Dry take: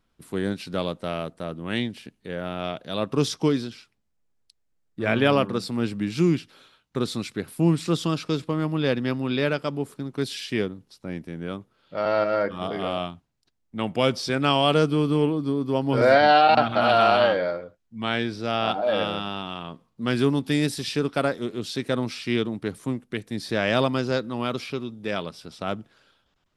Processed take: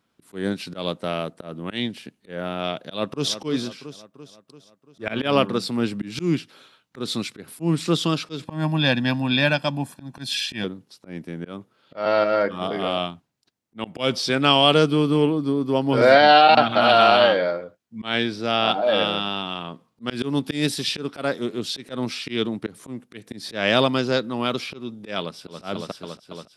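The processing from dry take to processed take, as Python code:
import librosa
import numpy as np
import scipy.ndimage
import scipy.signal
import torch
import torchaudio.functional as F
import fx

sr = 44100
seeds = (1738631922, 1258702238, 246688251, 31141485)

y = fx.echo_throw(x, sr, start_s=2.77, length_s=0.6, ms=340, feedback_pct=55, wet_db=-13.5)
y = fx.comb(y, sr, ms=1.2, depth=0.87, at=(8.45, 10.64))
y = fx.echo_throw(y, sr, start_s=25.19, length_s=0.44, ms=280, feedback_pct=80, wet_db=-0.5)
y = scipy.signal.sosfilt(scipy.signal.butter(2, 130.0, 'highpass', fs=sr, output='sos'), y)
y = fx.dynamic_eq(y, sr, hz=3400.0, q=1.5, threshold_db=-39.0, ratio=4.0, max_db=5)
y = fx.auto_swell(y, sr, attack_ms=148.0)
y = y * 10.0 ** (3.0 / 20.0)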